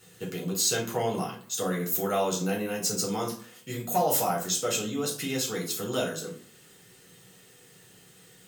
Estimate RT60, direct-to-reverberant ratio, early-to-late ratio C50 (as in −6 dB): 0.50 s, −3.0 dB, 8.0 dB